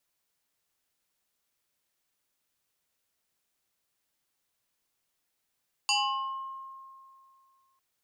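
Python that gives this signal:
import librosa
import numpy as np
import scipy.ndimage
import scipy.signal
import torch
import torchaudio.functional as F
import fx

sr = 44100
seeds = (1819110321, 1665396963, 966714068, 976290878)

y = fx.fm2(sr, length_s=1.9, level_db=-22, carrier_hz=1070.0, ratio=1.77, index=3.3, index_s=1.03, decay_s=2.37, shape='exponential')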